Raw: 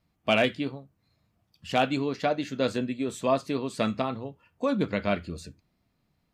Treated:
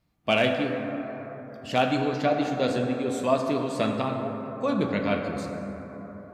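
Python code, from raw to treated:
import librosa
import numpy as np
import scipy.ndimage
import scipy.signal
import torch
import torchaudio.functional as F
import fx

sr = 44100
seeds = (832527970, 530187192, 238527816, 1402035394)

y = fx.rev_plate(x, sr, seeds[0], rt60_s=4.2, hf_ratio=0.3, predelay_ms=0, drr_db=2.5)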